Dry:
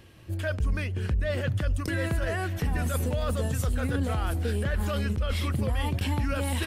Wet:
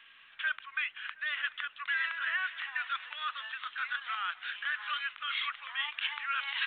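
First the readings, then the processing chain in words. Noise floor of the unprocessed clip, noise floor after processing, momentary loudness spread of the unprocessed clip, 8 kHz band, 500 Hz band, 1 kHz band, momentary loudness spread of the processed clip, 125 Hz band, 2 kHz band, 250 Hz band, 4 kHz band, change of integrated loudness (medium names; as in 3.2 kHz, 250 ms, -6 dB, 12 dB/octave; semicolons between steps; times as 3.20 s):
-36 dBFS, -58 dBFS, 1 LU, under -40 dB, under -30 dB, -1.0 dB, 5 LU, under -40 dB, +4.5 dB, under -40 dB, +3.5 dB, -5.5 dB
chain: steep high-pass 1.2 kHz 36 dB/octave; on a send: filtered feedback delay 722 ms, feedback 29%, low-pass 1.7 kHz, level -21.5 dB; on the sum: trim +4.5 dB; A-law 64 kbps 8 kHz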